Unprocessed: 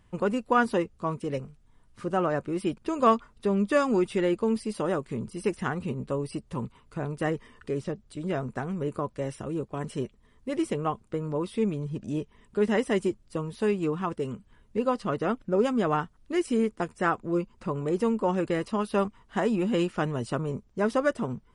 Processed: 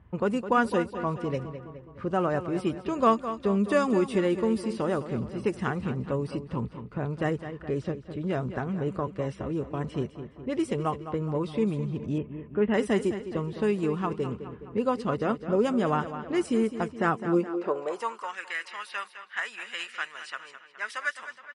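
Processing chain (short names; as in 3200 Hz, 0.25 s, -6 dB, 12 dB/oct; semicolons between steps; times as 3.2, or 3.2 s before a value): feedback echo 0.209 s, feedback 50%, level -12 dB; low-pass opened by the level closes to 1700 Hz, open at -21.5 dBFS; 12.18–12.74 steep low-pass 3000 Hz 48 dB/oct; in parallel at -2.5 dB: compressor, threshold -39 dBFS, peak gain reduction 22 dB; on the sum: high-pass sweep 66 Hz -> 1800 Hz, 16.78–18.36; gain -1.5 dB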